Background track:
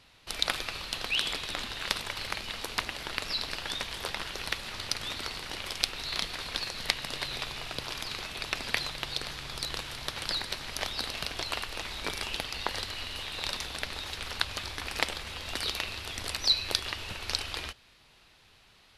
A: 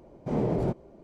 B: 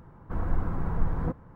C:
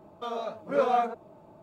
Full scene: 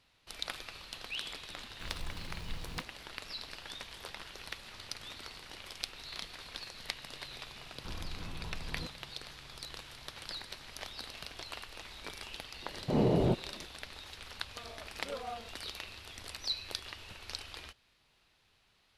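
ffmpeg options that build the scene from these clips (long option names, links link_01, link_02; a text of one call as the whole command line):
ffmpeg -i bed.wav -i cue0.wav -i cue1.wav -i cue2.wav -filter_complex "[2:a]asplit=2[link_01][link_02];[0:a]volume=-10.5dB[link_03];[link_01]acrusher=samples=16:mix=1:aa=0.000001[link_04];[link_02]acompressor=threshold=-28dB:ratio=6:attack=3.2:release=140:knee=1:detection=peak[link_05];[link_04]atrim=end=1.55,asetpts=PTS-STARTPTS,volume=-15.5dB,afade=type=in:duration=0.004:curve=hsin,afade=type=out:start_time=1.546:duration=0.004:curve=hsin,adelay=1500[link_06];[link_05]atrim=end=1.55,asetpts=PTS-STARTPTS,volume=-9dB,afade=type=in:duration=0.004:curve=hsin,afade=type=out:start_time=1.546:duration=0.004:curve=hsin,adelay=7550[link_07];[1:a]atrim=end=1.03,asetpts=PTS-STARTPTS,volume=-0.5dB,afade=type=in:duration=0.004:curve=hsin,afade=type=out:start_time=1.026:duration=0.004:curve=hsin,adelay=12620[link_08];[3:a]atrim=end=1.62,asetpts=PTS-STARTPTS,volume=-17.5dB,afade=type=in:duration=0.004:curve=hsin,afade=type=out:start_time=1.616:duration=0.004:curve=hsin,adelay=14340[link_09];[link_03][link_06][link_07][link_08][link_09]amix=inputs=5:normalize=0" out.wav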